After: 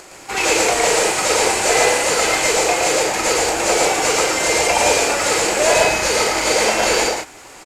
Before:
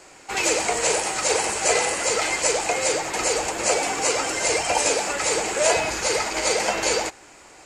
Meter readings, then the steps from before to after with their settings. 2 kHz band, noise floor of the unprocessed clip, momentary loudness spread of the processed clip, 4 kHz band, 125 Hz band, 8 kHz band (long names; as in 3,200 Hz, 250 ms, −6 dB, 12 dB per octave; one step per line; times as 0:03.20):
+7.0 dB, −48 dBFS, 3 LU, +6.5 dB, +7.0 dB, +4.5 dB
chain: variable-slope delta modulation 64 kbit/s
upward compression, threshold −42 dBFS
on a send: loudspeakers that aren't time-aligned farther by 14 metres −9 dB, 39 metres −2 dB, 50 metres −6 dB
on the sum: level +4 dB